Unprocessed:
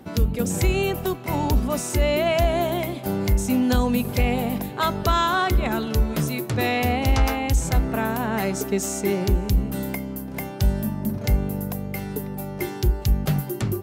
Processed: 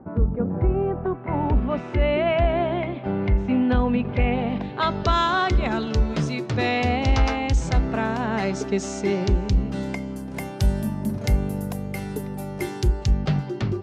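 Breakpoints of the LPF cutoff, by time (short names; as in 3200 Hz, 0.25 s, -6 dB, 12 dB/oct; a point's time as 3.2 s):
LPF 24 dB/oct
0.87 s 1300 Hz
1.7 s 2800 Hz
4.25 s 2800 Hz
5.17 s 6000 Hz
9.72 s 6000 Hz
10.43 s 11000 Hz
12.75 s 11000 Hz
13.29 s 5100 Hz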